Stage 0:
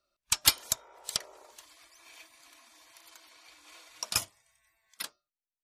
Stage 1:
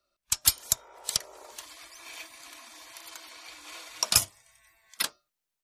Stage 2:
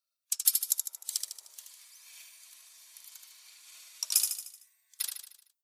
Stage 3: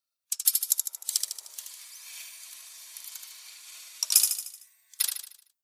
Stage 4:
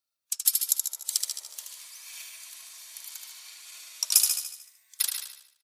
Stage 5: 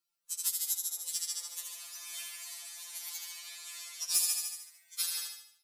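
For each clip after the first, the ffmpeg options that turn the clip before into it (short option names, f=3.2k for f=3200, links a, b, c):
-filter_complex "[0:a]acrossover=split=140|5200[a][b][c];[b]alimiter=limit=-23dB:level=0:latency=1:release=432[d];[a][d][c]amix=inputs=3:normalize=0,dynaudnorm=f=400:g=3:m=8dB,volume=1.5dB"
-filter_complex "[0:a]aderivative,asplit=2[a][b];[b]aecho=0:1:76|152|228|304|380|456:0.562|0.287|0.146|0.0746|0.038|0.0194[c];[a][c]amix=inputs=2:normalize=0,volume=-4.5dB"
-af "dynaudnorm=f=130:g=9:m=8.5dB"
-filter_complex "[0:a]asplit=2[a][b];[b]adelay=138,lowpass=f=4.9k:p=1,volume=-5dB,asplit=2[c][d];[d]adelay=138,lowpass=f=4.9k:p=1,volume=0.17,asplit=2[e][f];[f]adelay=138,lowpass=f=4.9k:p=1,volume=0.17[g];[a][c][e][g]amix=inputs=4:normalize=0"
-af "asoftclip=type=hard:threshold=-9.5dB,alimiter=limit=-18dB:level=0:latency=1:release=186,afftfilt=real='re*2.83*eq(mod(b,8),0)':imag='im*2.83*eq(mod(b,8),0)':win_size=2048:overlap=0.75,volume=3dB"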